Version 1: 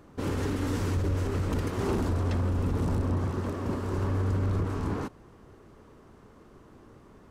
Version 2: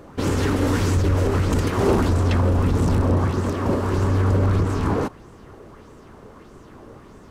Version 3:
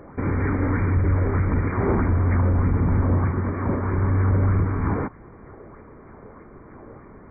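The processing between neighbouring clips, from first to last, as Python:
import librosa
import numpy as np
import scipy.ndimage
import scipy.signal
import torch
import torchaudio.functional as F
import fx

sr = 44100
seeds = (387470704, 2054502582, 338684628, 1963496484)

y1 = fx.bell_lfo(x, sr, hz=1.6, low_hz=500.0, high_hz=7900.0, db=7)
y1 = y1 * 10.0 ** (8.5 / 20.0)
y2 = fx.brickwall_lowpass(y1, sr, high_hz=2400.0)
y2 = fx.dynamic_eq(y2, sr, hz=530.0, q=0.79, threshold_db=-35.0, ratio=4.0, max_db=-6)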